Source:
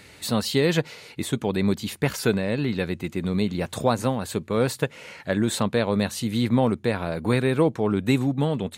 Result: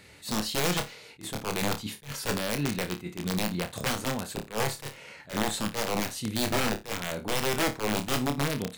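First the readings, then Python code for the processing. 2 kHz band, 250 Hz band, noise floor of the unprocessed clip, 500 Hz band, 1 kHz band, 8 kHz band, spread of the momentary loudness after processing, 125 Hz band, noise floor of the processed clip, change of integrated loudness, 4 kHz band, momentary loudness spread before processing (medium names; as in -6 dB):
-1.5 dB, -8.5 dB, -49 dBFS, -8.5 dB, -2.0 dB, +1.5 dB, 8 LU, -8.5 dB, -51 dBFS, -5.5 dB, 0.0 dB, 7 LU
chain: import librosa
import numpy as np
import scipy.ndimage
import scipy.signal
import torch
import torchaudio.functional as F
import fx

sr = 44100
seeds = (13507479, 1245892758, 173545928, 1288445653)

y = (np.mod(10.0 ** (15.5 / 20.0) * x + 1.0, 2.0) - 1.0) / 10.0 ** (15.5 / 20.0)
y = fx.room_flutter(y, sr, wall_m=4.8, rt60_s=0.23)
y = fx.attack_slew(y, sr, db_per_s=230.0)
y = y * librosa.db_to_amplitude(-5.5)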